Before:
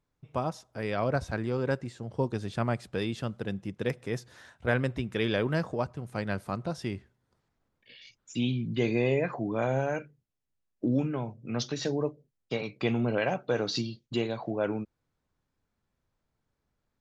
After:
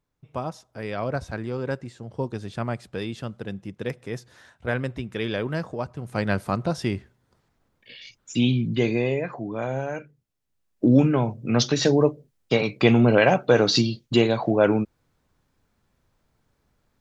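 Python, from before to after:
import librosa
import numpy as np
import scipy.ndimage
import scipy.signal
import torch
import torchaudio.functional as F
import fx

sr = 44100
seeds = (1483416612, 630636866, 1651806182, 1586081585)

y = fx.gain(x, sr, db=fx.line((5.81, 0.5), (6.24, 8.0), (8.6, 8.0), (9.24, 0.0), (9.94, 0.0), (11.0, 11.0)))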